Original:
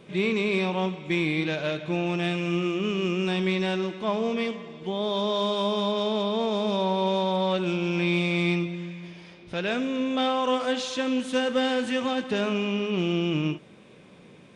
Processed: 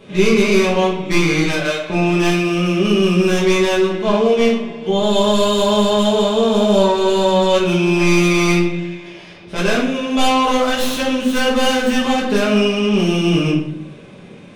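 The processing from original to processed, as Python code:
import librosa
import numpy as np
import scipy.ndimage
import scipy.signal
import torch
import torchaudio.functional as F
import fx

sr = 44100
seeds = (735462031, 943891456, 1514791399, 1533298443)

y = fx.tracing_dist(x, sr, depth_ms=0.13)
y = fx.highpass(y, sr, hz=600.0, slope=12, at=(1.44, 1.9))
y = fx.room_shoebox(y, sr, seeds[0], volume_m3=84.0, walls='mixed', distance_m=1.4)
y = y * librosa.db_to_amplitude(4.0)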